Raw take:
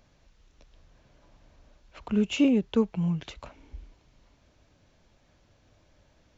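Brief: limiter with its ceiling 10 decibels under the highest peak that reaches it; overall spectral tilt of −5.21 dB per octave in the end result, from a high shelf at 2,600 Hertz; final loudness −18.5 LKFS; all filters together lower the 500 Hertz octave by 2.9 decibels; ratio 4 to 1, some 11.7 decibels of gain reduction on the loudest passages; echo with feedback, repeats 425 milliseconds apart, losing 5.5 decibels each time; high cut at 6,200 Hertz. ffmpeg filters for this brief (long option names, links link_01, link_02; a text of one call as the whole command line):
ffmpeg -i in.wav -af "lowpass=6200,equalizer=frequency=500:width_type=o:gain=-3.5,highshelf=frequency=2600:gain=4,acompressor=threshold=-33dB:ratio=4,alimiter=level_in=8dB:limit=-24dB:level=0:latency=1,volume=-8dB,aecho=1:1:425|850|1275|1700|2125|2550|2975:0.531|0.281|0.149|0.079|0.0419|0.0222|0.0118,volume=23dB" out.wav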